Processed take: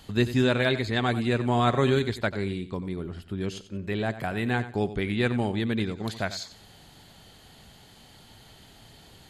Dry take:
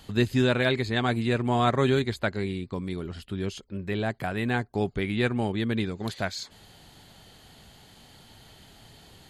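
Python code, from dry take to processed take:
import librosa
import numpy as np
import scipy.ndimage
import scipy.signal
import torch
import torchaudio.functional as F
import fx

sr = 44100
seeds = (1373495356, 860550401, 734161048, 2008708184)

p1 = fx.peak_eq(x, sr, hz=5500.0, db=-8.0, octaves=2.5, at=(2.77, 3.41))
y = p1 + fx.echo_feedback(p1, sr, ms=91, feedback_pct=23, wet_db=-13.5, dry=0)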